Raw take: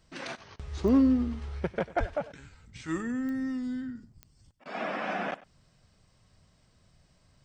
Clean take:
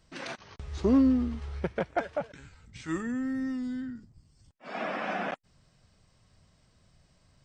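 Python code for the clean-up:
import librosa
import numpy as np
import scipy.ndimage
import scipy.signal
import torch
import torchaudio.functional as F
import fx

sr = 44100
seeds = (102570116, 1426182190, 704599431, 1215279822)

y = fx.fix_declick_ar(x, sr, threshold=10.0)
y = fx.fix_deplosive(y, sr, at_s=(1.99,))
y = fx.fix_interpolate(y, sr, at_s=(4.64,), length_ms=14.0)
y = fx.fix_echo_inverse(y, sr, delay_ms=96, level_db=-19.0)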